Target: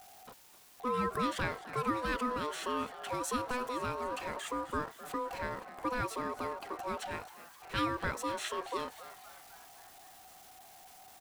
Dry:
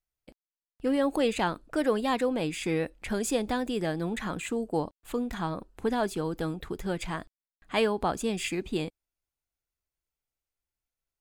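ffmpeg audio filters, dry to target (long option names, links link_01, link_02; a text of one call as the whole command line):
ffmpeg -i in.wav -filter_complex "[0:a]aeval=exprs='val(0)+0.5*0.01*sgn(val(0))':channel_layout=same,aeval=exprs='val(0)*sin(2*PI*750*n/s)':channel_layout=same,asplit=7[link_01][link_02][link_03][link_04][link_05][link_06][link_07];[link_02]adelay=259,afreqshift=140,volume=-16dB[link_08];[link_03]adelay=518,afreqshift=280,volume=-20.2dB[link_09];[link_04]adelay=777,afreqshift=420,volume=-24.3dB[link_10];[link_05]adelay=1036,afreqshift=560,volume=-28.5dB[link_11];[link_06]adelay=1295,afreqshift=700,volume=-32.6dB[link_12];[link_07]adelay=1554,afreqshift=840,volume=-36.8dB[link_13];[link_01][link_08][link_09][link_10][link_11][link_12][link_13]amix=inputs=7:normalize=0,volume=-4.5dB" out.wav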